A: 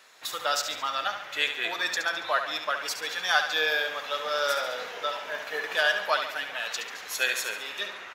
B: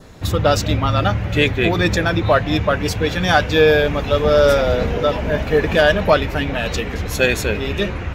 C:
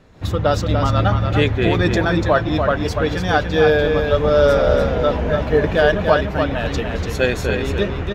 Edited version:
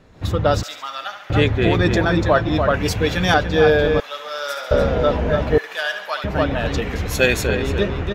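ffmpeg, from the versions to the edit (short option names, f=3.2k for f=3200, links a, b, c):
-filter_complex "[0:a]asplit=3[a][b][c];[1:a]asplit=2[d][e];[2:a]asplit=6[f][g][h][i][j][k];[f]atrim=end=0.632[l];[a]atrim=start=0.628:end=1.302[m];[g]atrim=start=1.298:end=2.742[n];[d]atrim=start=2.738:end=3.342[o];[h]atrim=start=3.338:end=4.002[p];[b]atrim=start=3.998:end=4.712[q];[i]atrim=start=4.708:end=5.582[r];[c]atrim=start=5.578:end=6.242[s];[j]atrim=start=6.238:end=6.822[t];[e]atrim=start=6.818:end=7.462[u];[k]atrim=start=7.458[v];[l][m]acrossfade=d=0.004:c1=hsin:c2=hsin[w];[w][n]acrossfade=d=0.004:c1=hsin:c2=hsin[x];[x][o]acrossfade=d=0.004:c1=hsin:c2=hsin[y];[y][p]acrossfade=d=0.004:c1=hsin:c2=hsin[z];[z][q]acrossfade=d=0.004:c1=hsin:c2=hsin[aa];[aa][r]acrossfade=d=0.004:c1=hsin:c2=hsin[ab];[ab][s]acrossfade=d=0.004:c1=hsin:c2=hsin[ac];[ac][t]acrossfade=d=0.004:c1=hsin:c2=hsin[ad];[ad][u]acrossfade=d=0.004:c1=hsin:c2=hsin[ae];[ae][v]acrossfade=d=0.004:c1=hsin:c2=hsin"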